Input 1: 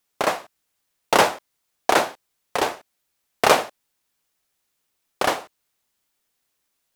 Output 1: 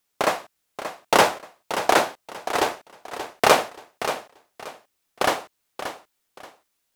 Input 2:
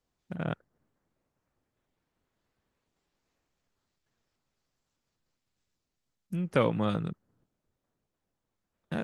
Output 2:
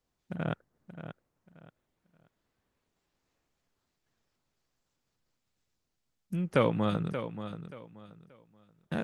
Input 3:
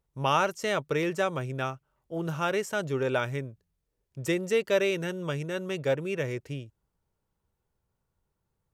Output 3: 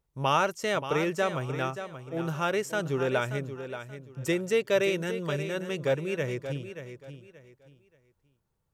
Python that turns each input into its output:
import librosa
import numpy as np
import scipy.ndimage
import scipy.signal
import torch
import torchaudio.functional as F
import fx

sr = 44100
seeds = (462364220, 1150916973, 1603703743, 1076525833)

y = fx.echo_feedback(x, sr, ms=580, feedback_pct=26, wet_db=-10.5)